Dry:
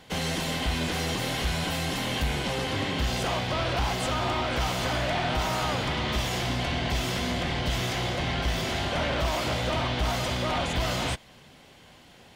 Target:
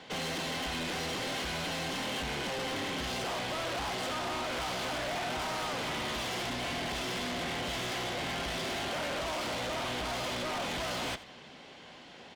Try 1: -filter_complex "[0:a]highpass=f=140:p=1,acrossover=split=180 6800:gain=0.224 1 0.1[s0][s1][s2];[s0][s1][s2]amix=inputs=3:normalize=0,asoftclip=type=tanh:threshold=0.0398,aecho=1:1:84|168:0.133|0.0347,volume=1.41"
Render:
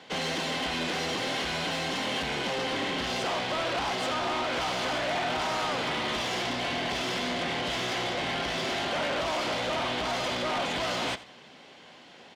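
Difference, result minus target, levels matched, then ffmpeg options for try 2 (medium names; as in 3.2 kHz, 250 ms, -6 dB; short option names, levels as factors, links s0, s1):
saturation: distortion -6 dB; 125 Hz band -2.5 dB
-filter_complex "[0:a]acrossover=split=180 6800:gain=0.224 1 0.1[s0][s1][s2];[s0][s1][s2]amix=inputs=3:normalize=0,asoftclip=type=tanh:threshold=0.0158,aecho=1:1:84|168:0.133|0.0347,volume=1.41"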